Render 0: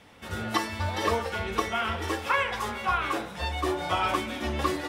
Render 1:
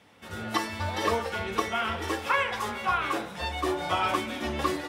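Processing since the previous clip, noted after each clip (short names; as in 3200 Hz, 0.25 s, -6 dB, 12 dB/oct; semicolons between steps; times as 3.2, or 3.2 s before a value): HPF 86 Hz; AGC gain up to 4 dB; gain -4 dB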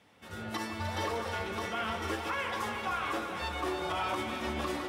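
limiter -20 dBFS, peak gain reduction 9.5 dB; on a send: echo with dull and thin repeats by turns 0.153 s, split 1300 Hz, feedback 83%, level -6 dB; on the sum: gain -5 dB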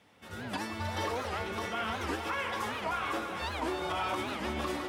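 record warp 78 rpm, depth 250 cents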